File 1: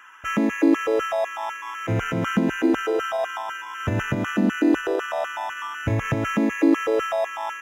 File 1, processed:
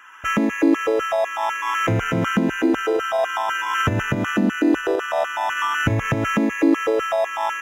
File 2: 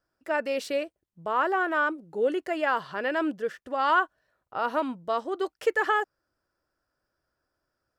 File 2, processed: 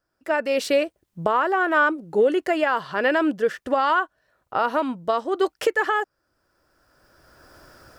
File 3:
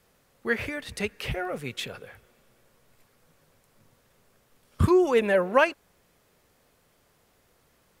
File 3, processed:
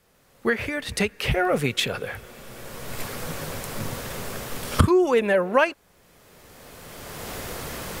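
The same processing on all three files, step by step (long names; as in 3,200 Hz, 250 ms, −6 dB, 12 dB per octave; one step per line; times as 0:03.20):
camcorder AGC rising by 18 dB per second
level +1 dB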